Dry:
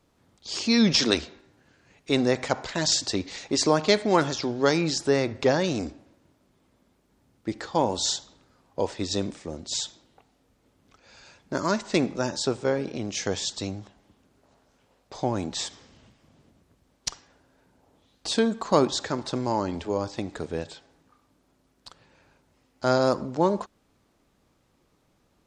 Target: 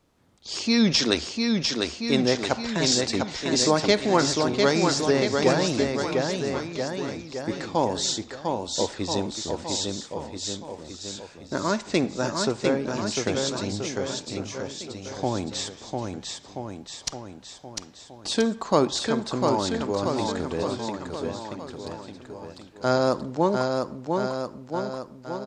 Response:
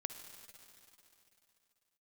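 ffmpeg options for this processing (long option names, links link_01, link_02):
-af "aecho=1:1:700|1330|1897|2407|2867:0.631|0.398|0.251|0.158|0.1"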